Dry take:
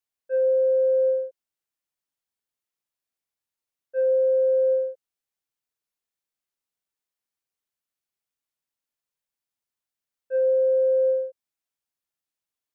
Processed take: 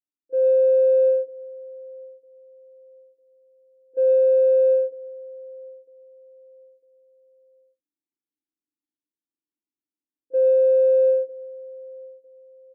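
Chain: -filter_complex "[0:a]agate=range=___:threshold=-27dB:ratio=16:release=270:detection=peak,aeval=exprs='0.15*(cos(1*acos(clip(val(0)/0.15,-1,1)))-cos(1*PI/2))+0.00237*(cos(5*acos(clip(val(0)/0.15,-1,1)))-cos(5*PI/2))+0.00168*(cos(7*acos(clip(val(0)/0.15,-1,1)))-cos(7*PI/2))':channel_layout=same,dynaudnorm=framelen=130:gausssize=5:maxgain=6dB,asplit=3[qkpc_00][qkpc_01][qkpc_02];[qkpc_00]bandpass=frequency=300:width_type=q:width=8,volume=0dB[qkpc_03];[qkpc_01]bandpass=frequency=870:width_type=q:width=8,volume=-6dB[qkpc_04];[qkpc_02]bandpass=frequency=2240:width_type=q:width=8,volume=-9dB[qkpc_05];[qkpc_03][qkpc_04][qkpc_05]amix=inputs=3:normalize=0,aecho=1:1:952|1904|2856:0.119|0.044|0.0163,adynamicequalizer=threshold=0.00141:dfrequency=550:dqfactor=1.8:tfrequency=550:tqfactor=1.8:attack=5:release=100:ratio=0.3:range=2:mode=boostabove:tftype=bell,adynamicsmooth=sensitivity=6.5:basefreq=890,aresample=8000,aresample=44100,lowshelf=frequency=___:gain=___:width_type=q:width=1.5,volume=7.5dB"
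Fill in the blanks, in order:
-13dB, 740, 13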